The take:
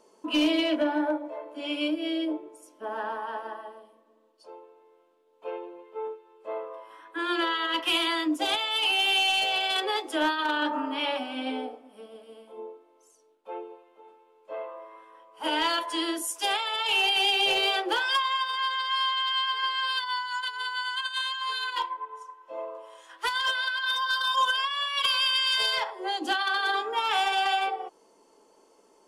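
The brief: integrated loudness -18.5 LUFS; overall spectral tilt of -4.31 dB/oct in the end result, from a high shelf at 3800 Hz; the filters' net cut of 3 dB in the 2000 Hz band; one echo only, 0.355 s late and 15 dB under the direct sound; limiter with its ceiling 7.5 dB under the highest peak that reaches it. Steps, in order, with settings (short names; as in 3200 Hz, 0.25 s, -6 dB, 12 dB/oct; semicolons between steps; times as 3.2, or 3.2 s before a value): bell 2000 Hz -5.5 dB; high shelf 3800 Hz +3.5 dB; limiter -23 dBFS; echo 0.355 s -15 dB; gain +12 dB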